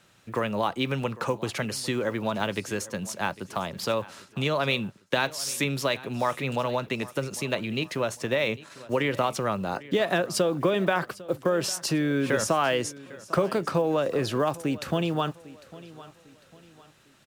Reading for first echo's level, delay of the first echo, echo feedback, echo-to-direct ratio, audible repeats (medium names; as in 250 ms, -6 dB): -19.0 dB, 801 ms, 37%, -18.5 dB, 2